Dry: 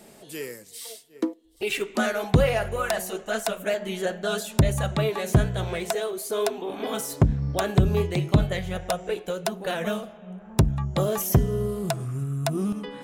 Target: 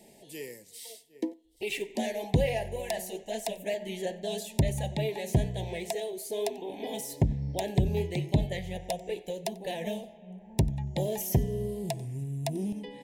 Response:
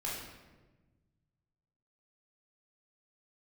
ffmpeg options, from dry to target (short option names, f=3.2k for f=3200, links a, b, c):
-filter_complex "[0:a]asuperstop=centerf=1300:order=8:qfactor=1.6,asplit=2[a][b];[b]aecho=0:1:92:0.0668[c];[a][c]amix=inputs=2:normalize=0,volume=-6dB"